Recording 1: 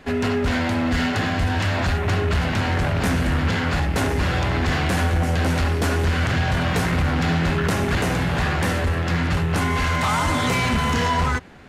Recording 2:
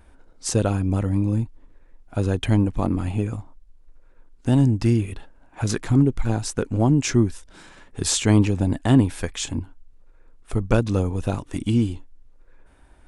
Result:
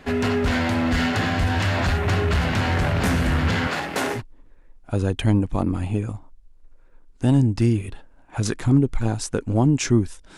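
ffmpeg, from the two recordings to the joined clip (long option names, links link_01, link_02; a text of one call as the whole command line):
ffmpeg -i cue0.wav -i cue1.wav -filter_complex "[0:a]asettb=1/sr,asplit=3[link_01][link_02][link_03];[link_01]atrim=end=3.674[link_04];[link_02]atrim=start=3.67:end=4.22,asetpts=PTS-STARTPTS,afade=type=in:duration=0.004:curve=qsin,afade=type=out:start_time=0.546:duration=0.004:curve=qsin,highpass=290[link_05];[link_03]atrim=start=4.216[link_06];[link_04][link_05]acrossfade=duration=0.004:curve1=hsin:curve2=qsin[link_07];[link_07][link_06]acrossfade=duration=0.004:curve1=qsin:curve2=hsin,apad=whole_dur=10.37,atrim=end=10.37,atrim=end=4.22,asetpts=PTS-STARTPTS[link_08];[1:a]atrim=start=1.38:end=7.61,asetpts=PTS-STARTPTS[link_09];[link_08][link_09]acrossfade=duration=0.08:curve1=tri:curve2=tri" out.wav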